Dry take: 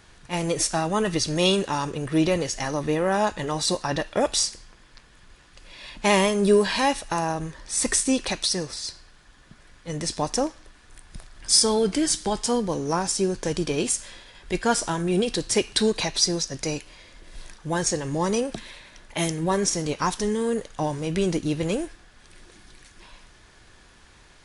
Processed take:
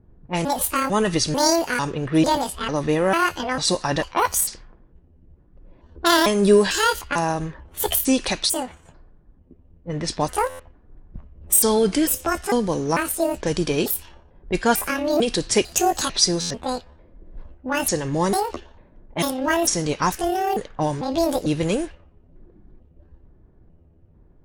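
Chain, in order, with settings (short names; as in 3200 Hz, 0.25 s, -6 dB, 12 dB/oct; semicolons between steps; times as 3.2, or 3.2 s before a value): trilling pitch shifter +9 st, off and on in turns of 0.447 s; low-pass opened by the level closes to 300 Hz, open at -22 dBFS; stuck buffer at 10.49/16.4, samples 512, times 8; gain +3.5 dB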